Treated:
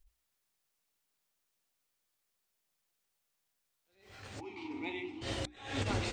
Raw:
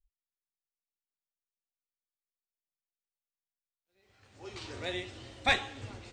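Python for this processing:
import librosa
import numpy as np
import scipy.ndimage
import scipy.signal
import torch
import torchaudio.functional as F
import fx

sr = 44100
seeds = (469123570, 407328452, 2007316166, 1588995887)

y = fx.vowel_filter(x, sr, vowel='u', at=(4.39, 5.21), fade=0.02)
y = fx.over_compress(y, sr, threshold_db=-43.0, ratio=-0.5)
y = fx.hum_notches(y, sr, base_hz=60, count=6)
y = fx.attack_slew(y, sr, db_per_s=100.0)
y = y * 10.0 ** (7.0 / 20.0)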